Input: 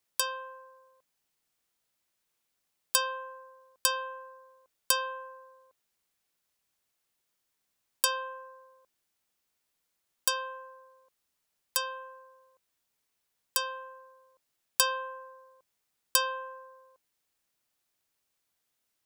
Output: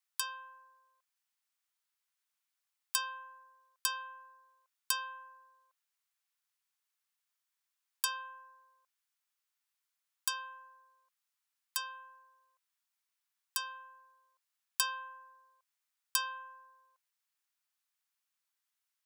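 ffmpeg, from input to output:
-filter_complex "[0:a]acrossover=split=870|1300[s0][s1][s2];[s0]acrusher=bits=3:mix=0:aa=0.000001[s3];[s1]crystalizer=i=8.5:c=0[s4];[s3][s4][s2]amix=inputs=3:normalize=0,volume=0.473"

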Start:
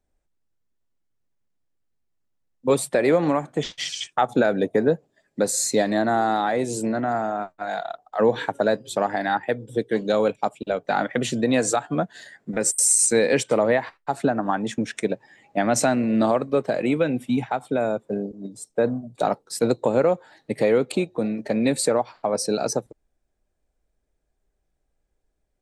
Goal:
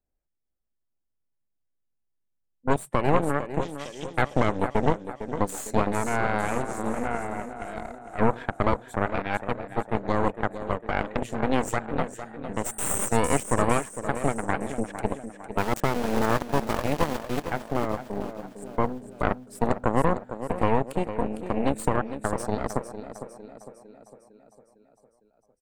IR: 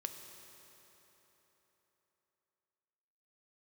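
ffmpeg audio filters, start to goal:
-filter_complex "[0:a]equalizer=f=4400:t=o:w=1.2:g=-14.5,asettb=1/sr,asplit=3[s0][s1][s2];[s0]atrim=end=15.584[s3];[s1]atrim=start=15.58:end=17.44,asetpts=PTS-STARTPTS,afade=t=in:d=0.004:c=qsin,afade=t=out:st=1.856:d=0.004:c=qsin,aeval=exprs='val(0)*gte(abs(val(0)),0.075)':c=same[s4];[s2]atrim=start=17.436[s5];[s3][s4]acrossfade=d=0.004:c1=hsin:c2=qsin[s6];[s6][s5]acrossfade=d=0.004:c1=qsin:c2=hsin,aecho=1:1:455|910|1365|1820|2275|2730|3185:0.398|0.223|0.125|0.0699|0.0392|0.0219|0.0123,aeval=exprs='0.531*(cos(1*acos(clip(val(0)/0.531,-1,1)))-cos(1*PI/2))+0.106*(cos(3*acos(clip(val(0)/0.531,-1,1)))-cos(3*PI/2))+0.211*(cos(4*acos(clip(val(0)/0.531,-1,1)))-cos(4*PI/2))+0.0188*(cos(5*acos(clip(val(0)/0.531,-1,1)))-cos(5*PI/2))':c=same,volume=0.631"

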